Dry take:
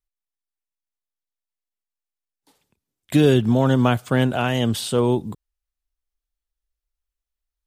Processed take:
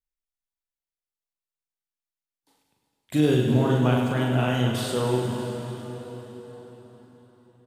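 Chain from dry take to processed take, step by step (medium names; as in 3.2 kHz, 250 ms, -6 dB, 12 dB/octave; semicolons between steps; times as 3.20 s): on a send: reverse bouncing-ball echo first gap 40 ms, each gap 1.6×, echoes 5; on the sum: plate-style reverb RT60 4.9 s, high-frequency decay 0.8×, DRR 3 dB; trim -8 dB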